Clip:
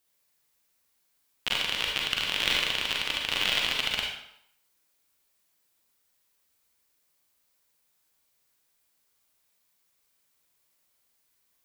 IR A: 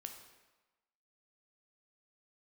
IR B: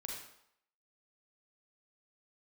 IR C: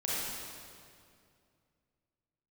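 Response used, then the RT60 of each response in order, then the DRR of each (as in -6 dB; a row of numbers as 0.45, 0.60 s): B; 1.2, 0.75, 2.3 s; 4.5, -1.5, -8.0 dB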